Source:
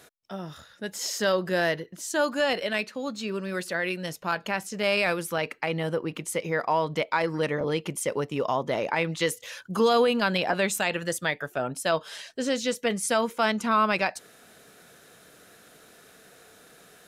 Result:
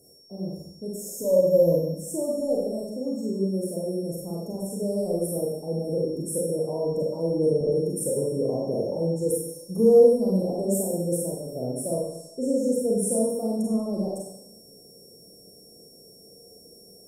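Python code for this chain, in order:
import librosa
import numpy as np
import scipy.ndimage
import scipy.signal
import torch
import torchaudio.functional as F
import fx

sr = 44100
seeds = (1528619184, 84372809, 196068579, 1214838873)

y = fx.ripple_eq(x, sr, per_octave=1.1, db=16, at=(1.18, 1.94))
y = y + 10.0 ** (-43.0 / 20.0) * np.sin(2.0 * np.pi * 5500.0 * np.arange(len(y)) / sr)
y = scipy.signal.sosfilt(scipy.signal.ellip(3, 1.0, 60, [510.0, 8800.0], 'bandstop', fs=sr, output='sos'), y)
y = fx.rev_schroeder(y, sr, rt60_s=0.83, comb_ms=32, drr_db=-3.5)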